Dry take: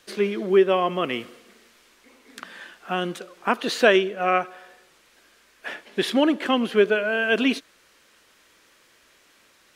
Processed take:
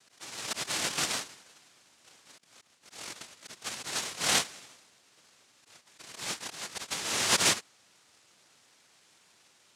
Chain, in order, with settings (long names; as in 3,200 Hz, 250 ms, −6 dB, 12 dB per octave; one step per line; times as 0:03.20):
ring modulation 110 Hz
volume swells 537 ms
cochlear-implant simulation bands 1
level −1.5 dB